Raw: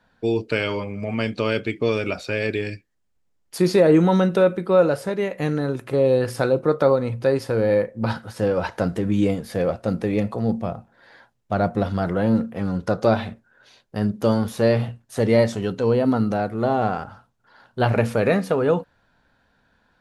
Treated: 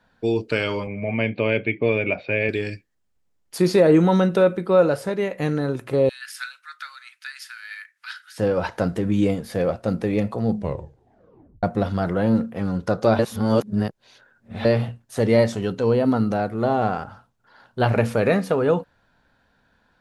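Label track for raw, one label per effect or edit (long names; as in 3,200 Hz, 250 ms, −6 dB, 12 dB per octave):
0.870000	2.490000	loudspeaker in its box 100–2,900 Hz, peaks and dips at 110 Hz +4 dB, 610 Hz +4 dB, 1,300 Hz −10 dB, 2,300 Hz +8 dB
6.090000	8.380000	elliptic high-pass filter 1,500 Hz, stop band 70 dB
10.490000	10.490000	tape stop 1.14 s
13.190000	14.650000	reverse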